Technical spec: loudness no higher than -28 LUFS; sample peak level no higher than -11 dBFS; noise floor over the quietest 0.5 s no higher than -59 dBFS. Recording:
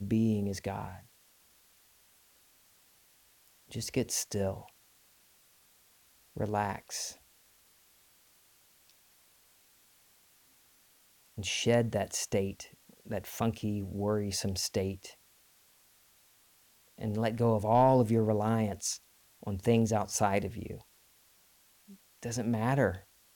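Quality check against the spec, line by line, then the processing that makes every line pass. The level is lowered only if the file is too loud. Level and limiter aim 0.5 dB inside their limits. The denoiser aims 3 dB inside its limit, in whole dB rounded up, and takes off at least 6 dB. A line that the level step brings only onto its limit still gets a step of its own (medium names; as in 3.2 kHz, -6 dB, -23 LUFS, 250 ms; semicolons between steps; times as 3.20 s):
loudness -31.5 LUFS: pass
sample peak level -15.0 dBFS: pass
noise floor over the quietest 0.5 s -65 dBFS: pass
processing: none needed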